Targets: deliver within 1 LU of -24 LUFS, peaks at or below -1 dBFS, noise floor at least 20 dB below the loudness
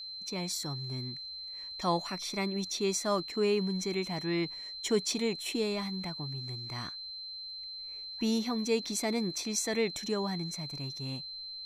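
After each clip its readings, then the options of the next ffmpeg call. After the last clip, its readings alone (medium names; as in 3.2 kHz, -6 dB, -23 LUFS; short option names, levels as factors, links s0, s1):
steady tone 4.1 kHz; tone level -40 dBFS; loudness -33.5 LUFS; peak level -16.0 dBFS; loudness target -24.0 LUFS
-> -af "bandreject=f=4100:w=30"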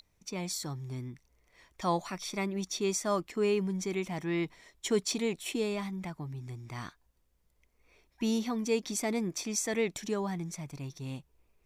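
steady tone not found; loudness -33.5 LUFS; peak level -16.0 dBFS; loudness target -24.0 LUFS
-> -af "volume=2.99"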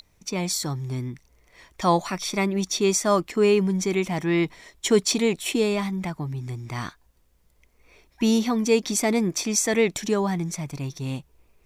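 loudness -24.0 LUFS; peak level -6.5 dBFS; noise floor -63 dBFS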